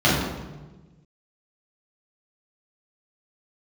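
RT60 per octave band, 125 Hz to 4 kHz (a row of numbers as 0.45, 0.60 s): 1.8, 1.6, 1.3, 1.1, 0.95, 0.80 s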